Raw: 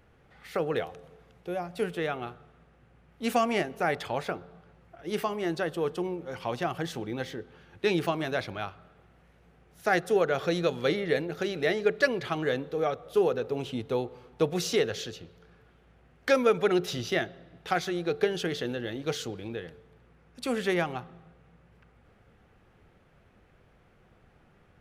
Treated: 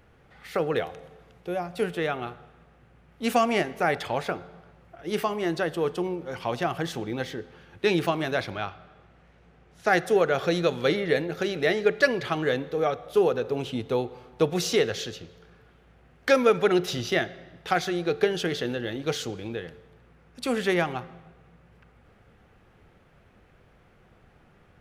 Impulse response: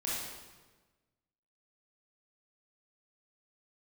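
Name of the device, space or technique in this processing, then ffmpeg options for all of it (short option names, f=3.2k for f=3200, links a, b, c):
filtered reverb send: -filter_complex "[0:a]asettb=1/sr,asplit=3[a][b][c];[a]atrim=end=8.574[d];[b]atrim=start=8.57:end=9.87,asetpts=PTS-STARTPTS,afade=t=in:d=0.004:c=qsin,afade=t=out:st=1.296:d=0.004:c=qsin,lowpass=7.3k[e];[c]atrim=start=9.866[f];[d][e]acrossfade=d=0.004:c1=hsin:c2=qsin[g];[g][f]acrossfade=d=0.004:c1=qsin:c2=hsin,asplit=2[h][i];[i]highpass=520,lowpass=7.3k[j];[1:a]atrim=start_sample=2205[k];[j][k]afir=irnorm=-1:irlink=0,volume=-21dB[l];[h][l]amix=inputs=2:normalize=0,volume=3dB"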